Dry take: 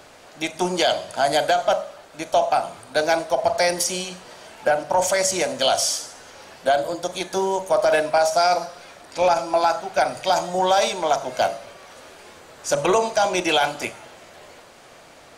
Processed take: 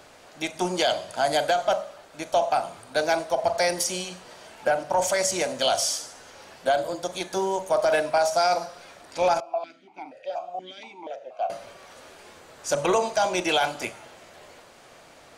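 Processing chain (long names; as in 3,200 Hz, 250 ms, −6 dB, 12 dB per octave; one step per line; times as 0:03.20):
0:09.40–0:11.50: formant filter that steps through the vowels 4.2 Hz
level −3.5 dB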